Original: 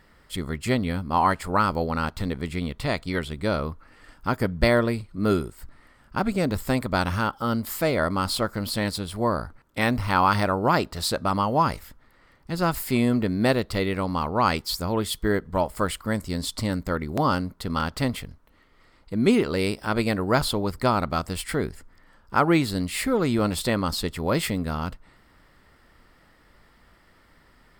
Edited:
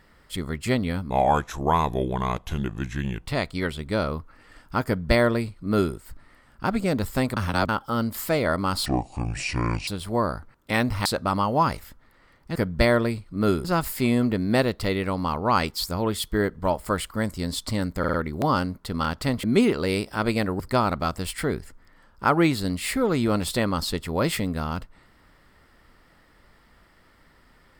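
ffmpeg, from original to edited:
-filter_complex "[0:a]asplit=15[s0][s1][s2][s3][s4][s5][s6][s7][s8][s9][s10][s11][s12][s13][s14];[s0]atrim=end=1.104[s15];[s1]atrim=start=1.1:end=2.79,asetpts=PTS-STARTPTS,asetrate=34398,aresample=44100[s16];[s2]atrim=start=2.786:end=6.892[s17];[s3]atrim=start=6.888:end=7.212,asetpts=PTS-STARTPTS,areverse[s18];[s4]atrim=start=7.208:end=8.384[s19];[s5]atrim=start=8.38:end=8.95,asetpts=PTS-STARTPTS,asetrate=24696,aresample=44100,atrim=end_sample=44887,asetpts=PTS-STARTPTS[s20];[s6]atrim=start=8.946:end=10.132[s21];[s7]atrim=start=11.048:end=12.552[s22];[s8]atrim=start=4.378:end=5.472[s23];[s9]atrim=start=12.548:end=16.942[s24];[s10]atrim=start=16.888:end=16.942[s25];[s11]atrim=start=16.888:end=16.942[s26];[s12]atrim=start=16.888:end=18.192[s27];[s13]atrim=start=19.138:end=20.302[s28];[s14]atrim=start=20.698[s29];[s15][s16]acrossfade=d=0.004:c1=hsin:c2=hsin[s30];[s30][s17]acrossfade=d=0.004:c1=hsin:c2=hsin[s31];[s31][s18]acrossfade=d=0.004:c1=hsin:c2=hsin[s32];[s32][s19]acrossfade=d=0.004:c1=hsin:c2=hsin[s33];[s33][s20]acrossfade=d=0.004:c1=hsin:c2=hsin[s34];[s34][s21]acrossfade=d=0.004:c1=hsin:c2=hsin[s35];[s35][s22]acrossfade=d=0.004:c1=hsin:c2=hsin[s36];[s36][s23]acrossfade=d=0.004:c1=hsin:c2=hsin[s37];[s37][s24]acrossfade=d=0.004:c1=hsin:c2=hsin[s38];[s38][s25]acrossfade=d=0.004:c1=hsin:c2=hsin[s39];[s39][s26]acrossfade=d=0.004:c1=hsin:c2=hsin[s40];[s40][s27]acrossfade=d=0.004:c1=hsin:c2=hsin[s41];[s41][s28]acrossfade=d=0.004:c1=hsin:c2=hsin[s42];[s42][s29]acrossfade=d=0.004:c1=hsin:c2=hsin"

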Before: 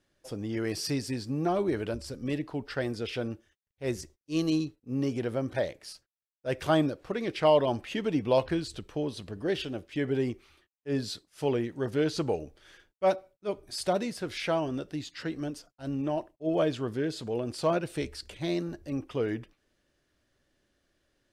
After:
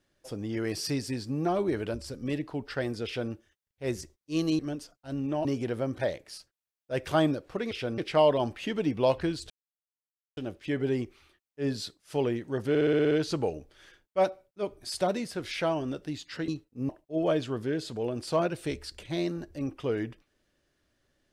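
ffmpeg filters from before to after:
-filter_complex "[0:a]asplit=16[s0][s1][s2][s3][s4][s5][s6][s7][s8][s9][s10][s11][s12][s13][s14][s15];[s0]atrim=end=4.592[s16];[s1]atrim=start=15.338:end=16.202[s17];[s2]atrim=start=4.998:end=7.262[s18];[s3]atrim=start=3.048:end=3.322[s19];[s4]atrim=start=7.258:end=8.78,asetpts=PTS-STARTPTS,afade=t=out:st=1.518:d=0.004:c=hsin[s20];[s5]atrim=start=8.78:end=9.65,asetpts=PTS-STARTPTS,volume=0[s21];[s6]atrim=start=9.65:end=12.032,asetpts=PTS-STARTPTS,afade=t=in:d=0.004:c=hsin[s22];[s7]atrim=start=11.968:end=12.032[s23];[s8]atrim=start=11.968:end=12.032[s24];[s9]atrim=start=11.968:end=12.032[s25];[s10]atrim=start=11.968:end=12.032[s26];[s11]atrim=start=11.968:end=12.032[s27];[s12]atrim=start=11.968:end=12.032[s28];[s13]atrim=start=11.968:end=15.342[s29];[s14]atrim=start=4.588:end=5.002[s30];[s15]atrim=start=16.198[s31];[s16][s17]acrossfade=d=0.004:c1=hsin:c2=hsin[s32];[s32][s18]acrossfade=d=0.004:c1=hsin:c2=hsin[s33];[s33][s19]acrossfade=d=0.004:c1=hsin:c2=hsin[s34];[s20][s21][s22]concat=n=3:v=0:a=1[s35];[s34][s35]acrossfade=d=0.004:c1=hsin:c2=hsin[s36];[s36][s23]acrossfade=d=0.004:c1=hsin:c2=hsin[s37];[s37][s24]acrossfade=d=0.004:c1=hsin:c2=hsin[s38];[s38][s25]acrossfade=d=0.004:c1=hsin:c2=hsin[s39];[s39][s26]acrossfade=d=0.004:c1=hsin:c2=hsin[s40];[s40][s27]acrossfade=d=0.004:c1=hsin:c2=hsin[s41];[s41][s28]acrossfade=d=0.004:c1=hsin:c2=hsin[s42];[s42][s29]acrossfade=d=0.004:c1=hsin:c2=hsin[s43];[s43][s30]acrossfade=d=0.004:c1=hsin:c2=hsin[s44];[s44][s31]acrossfade=d=0.004:c1=hsin:c2=hsin"

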